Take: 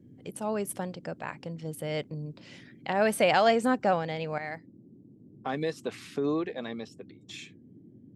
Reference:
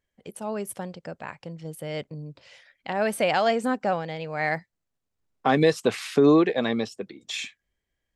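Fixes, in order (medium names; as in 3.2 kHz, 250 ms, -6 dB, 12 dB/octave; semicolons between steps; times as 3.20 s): noise print and reduce 26 dB; trim 0 dB, from 4.38 s +11.5 dB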